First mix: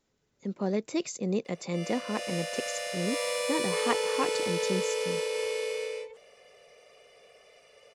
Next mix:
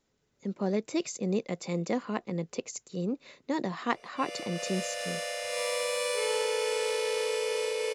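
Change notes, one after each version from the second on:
background: entry +2.45 s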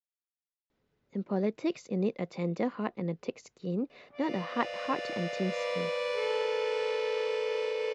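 speech: entry +0.70 s
master: add high-frequency loss of the air 210 metres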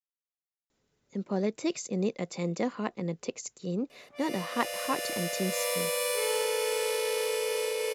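background: remove Savitzky-Golay smoothing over 9 samples
master: remove high-frequency loss of the air 210 metres

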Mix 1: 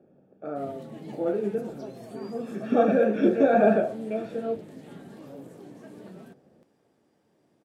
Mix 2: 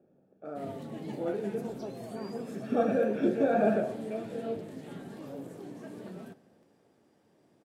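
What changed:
speech −8.5 dB
reverb: on, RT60 1.1 s

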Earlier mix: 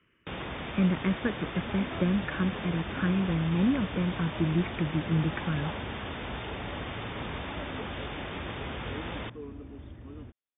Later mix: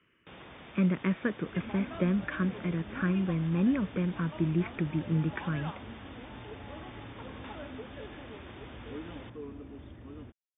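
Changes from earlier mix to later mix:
first sound −11.5 dB
master: add low-shelf EQ 91 Hz −7 dB

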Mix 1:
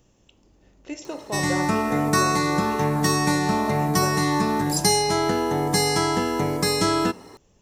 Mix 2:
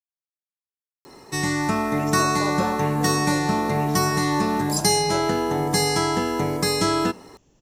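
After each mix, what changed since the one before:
speech: entry +1.10 s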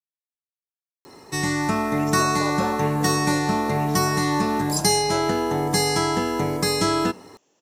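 speech: add high-pass filter 410 Hz 12 dB per octave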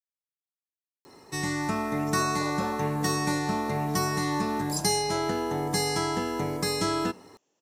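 speech −9.0 dB
background −6.0 dB

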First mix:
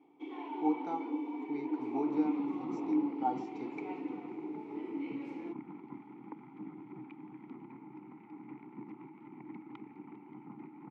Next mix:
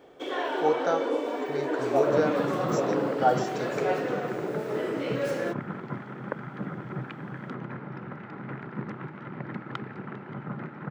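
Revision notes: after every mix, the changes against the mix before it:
speech −5.0 dB
master: remove formant filter u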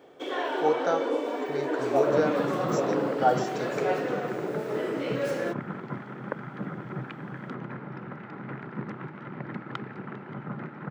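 master: add high-pass filter 94 Hz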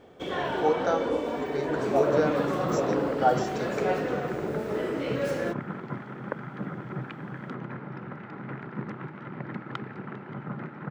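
first sound: remove linear-phase brick-wall high-pass 240 Hz
master: remove high-pass filter 94 Hz

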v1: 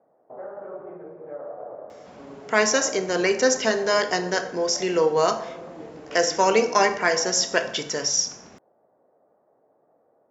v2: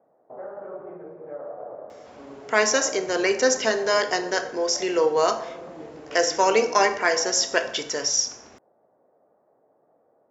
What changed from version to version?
speech: add parametric band 170 Hz −14.5 dB 0.47 octaves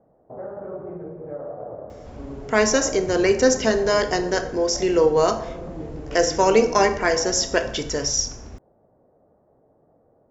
master: remove meter weighting curve A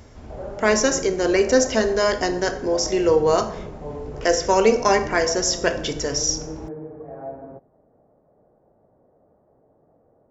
speech: entry −1.90 s

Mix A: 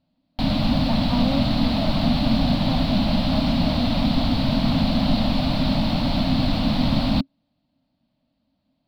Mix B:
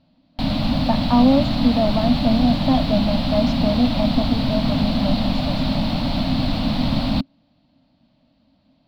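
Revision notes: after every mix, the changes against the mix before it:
speech +11.0 dB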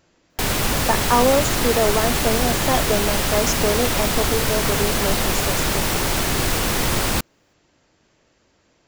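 master: remove drawn EQ curve 100 Hz 0 dB, 270 Hz +11 dB, 390 Hz −24 dB, 610 Hz +2 dB, 1,700 Hz −14 dB, 4,300 Hz +1 dB, 6,400 Hz −29 dB

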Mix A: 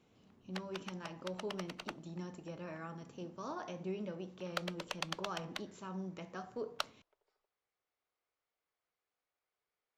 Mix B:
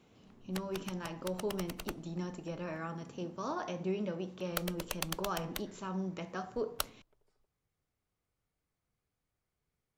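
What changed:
speech +5.5 dB
background: remove three-way crossover with the lows and the highs turned down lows −23 dB, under 400 Hz, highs −23 dB, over 6,000 Hz

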